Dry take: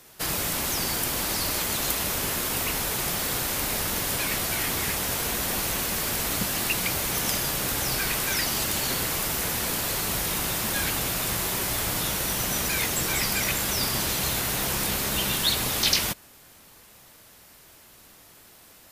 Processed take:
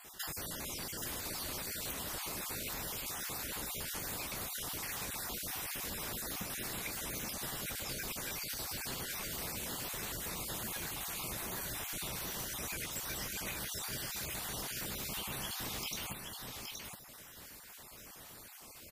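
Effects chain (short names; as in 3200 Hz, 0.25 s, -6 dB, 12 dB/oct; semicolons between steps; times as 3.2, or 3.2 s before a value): random spectral dropouts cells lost 38%; compressor, threshold -40 dBFS, peak gain reduction 17 dB; on a send: echo 0.822 s -4.5 dB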